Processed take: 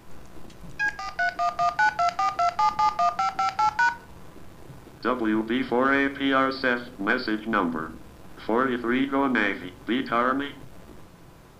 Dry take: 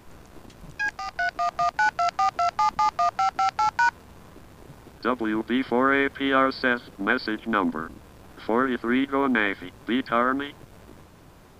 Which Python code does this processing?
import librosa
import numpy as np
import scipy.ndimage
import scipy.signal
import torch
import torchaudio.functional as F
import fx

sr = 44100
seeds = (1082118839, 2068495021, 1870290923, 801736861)

p1 = 10.0 ** (-16.0 / 20.0) * np.tanh(x / 10.0 ** (-16.0 / 20.0))
p2 = x + (p1 * librosa.db_to_amplitude(-5.0))
p3 = fx.room_shoebox(p2, sr, seeds[0], volume_m3=380.0, walls='furnished', distance_m=0.71)
y = p3 * librosa.db_to_amplitude(-4.0)